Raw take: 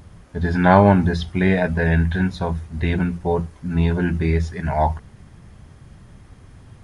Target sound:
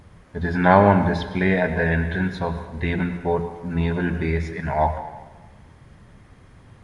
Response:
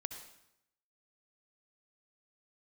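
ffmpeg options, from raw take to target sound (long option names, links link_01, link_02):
-filter_complex "[0:a]asplit=2[link_01][link_02];[link_02]equalizer=frequency=125:width_type=o:width=1:gain=4,equalizer=frequency=250:width_type=o:width=1:gain=6,equalizer=frequency=500:width_type=o:width=1:gain=9,equalizer=frequency=1000:width_type=o:width=1:gain=8,equalizer=frequency=2000:width_type=o:width=1:gain=11,equalizer=frequency=4000:width_type=o:width=1:gain=6[link_03];[1:a]atrim=start_sample=2205,asetrate=29547,aresample=44100[link_04];[link_03][link_04]afir=irnorm=-1:irlink=0,volume=-8dB[link_05];[link_01][link_05]amix=inputs=2:normalize=0,volume=-8dB"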